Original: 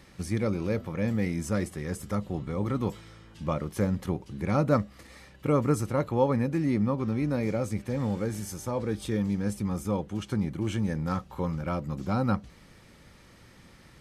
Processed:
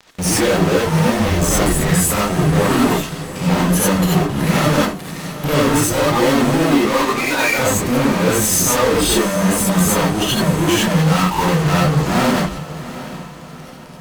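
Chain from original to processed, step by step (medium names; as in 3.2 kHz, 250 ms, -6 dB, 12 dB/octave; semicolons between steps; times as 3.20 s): 1.19–1.81 s: octave divider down 1 oct, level -1 dB; 6.67–7.58 s: high-pass 370 Hz -> 1.1 kHz 12 dB/octave; spectral noise reduction 11 dB; in parallel at -2 dB: compression, threshold -38 dBFS, peak gain reduction 18.5 dB; 2.90–3.72 s: on the sum: frequency shift -330 Hz; fuzz box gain 50 dB, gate -51 dBFS; echo that smears into a reverb 738 ms, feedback 45%, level -14 dB; gated-style reverb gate 110 ms rising, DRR -5 dB; trim -6.5 dB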